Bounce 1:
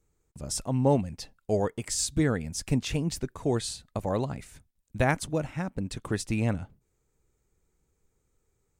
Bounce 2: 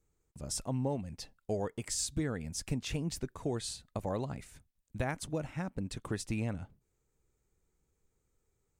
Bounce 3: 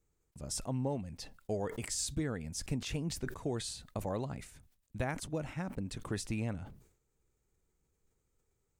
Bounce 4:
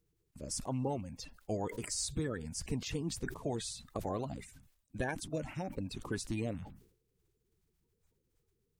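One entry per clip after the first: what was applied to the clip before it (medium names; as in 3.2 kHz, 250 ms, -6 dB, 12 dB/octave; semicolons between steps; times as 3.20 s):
compression 6:1, threshold -25 dBFS, peak gain reduction 8 dB; trim -4.5 dB
decay stretcher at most 100 dB/s; trim -1.5 dB
coarse spectral quantiser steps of 30 dB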